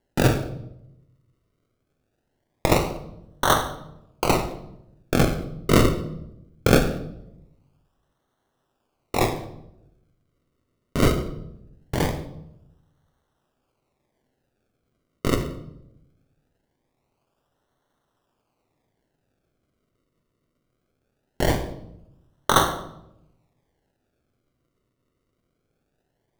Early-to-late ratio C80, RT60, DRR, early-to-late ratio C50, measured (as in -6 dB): 13.0 dB, 0.85 s, 7.0 dB, 10.5 dB